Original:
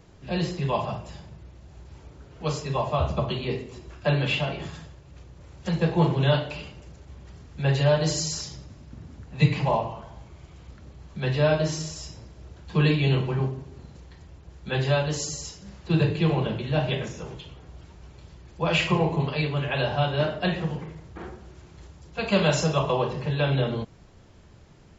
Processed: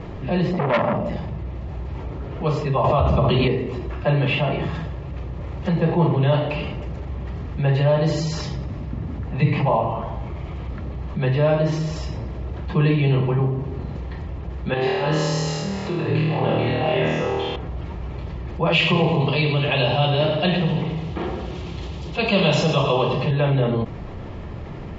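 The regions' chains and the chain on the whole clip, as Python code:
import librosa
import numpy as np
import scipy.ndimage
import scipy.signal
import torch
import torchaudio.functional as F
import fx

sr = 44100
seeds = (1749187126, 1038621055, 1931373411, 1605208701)

y = fx.chain(x, sr, fx.small_body(hz=(220.0, 570.0, 2000.0), ring_ms=50, db=15),
    fx.transformer_sat(knee_hz=2500.0), at=(0.53, 1.17))
y = fx.chain(y, sr, fx.high_shelf(hz=5500.0, db=7.0),
    fx.env_flatten(amount_pct=100), at=(2.84, 3.48))
y = fx.chain(y, sr, fx.low_shelf(hz=190.0, db=-11.5),
    fx.over_compress(threshold_db=-31.0, ratio=-0.5),
    fx.room_flutter(wall_m=4.4, rt60_s=1.1), at=(14.74, 17.56))
y = fx.chain(y, sr, fx.highpass(hz=48.0, slope=12),
    fx.high_shelf_res(hz=2400.0, db=8.5, q=1.5),
    fx.echo_feedback(ms=106, feedback_pct=47, wet_db=-10), at=(18.72, 23.31))
y = scipy.signal.sosfilt(scipy.signal.butter(2, 2300.0, 'lowpass', fs=sr, output='sos'), y)
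y = fx.notch(y, sr, hz=1500.0, q=7.1)
y = fx.env_flatten(y, sr, amount_pct=50)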